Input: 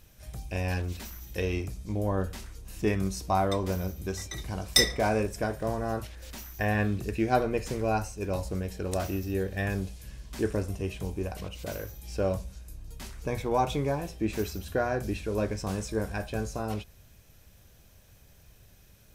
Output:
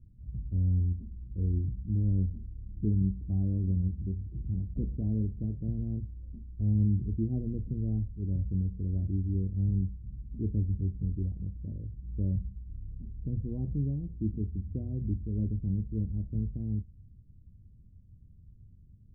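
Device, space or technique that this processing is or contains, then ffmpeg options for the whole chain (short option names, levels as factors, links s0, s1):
the neighbour's flat through the wall: -af "lowpass=f=250:w=0.5412,lowpass=f=250:w=1.3066,equalizer=f=94:t=o:w=0.68:g=4,volume=1.19"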